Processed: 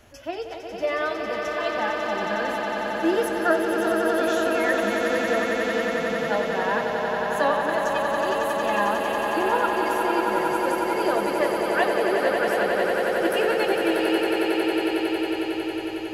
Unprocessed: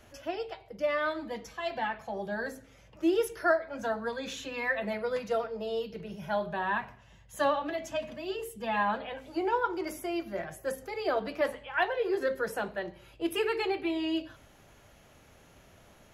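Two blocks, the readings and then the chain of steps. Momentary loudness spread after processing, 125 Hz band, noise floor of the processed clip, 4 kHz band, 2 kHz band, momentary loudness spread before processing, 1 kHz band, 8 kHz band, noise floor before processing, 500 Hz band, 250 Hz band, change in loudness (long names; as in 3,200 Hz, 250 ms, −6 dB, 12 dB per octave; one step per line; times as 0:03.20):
5 LU, +7.0 dB, −33 dBFS, +9.0 dB, +9.5 dB, 9 LU, +9.5 dB, +9.5 dB, −58 dBFS, +9.5 dB, +9.5 dB, +9.0 dB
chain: echo that builds up and dies away 91 ms, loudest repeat 8, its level −7 dB
level +3.5 dB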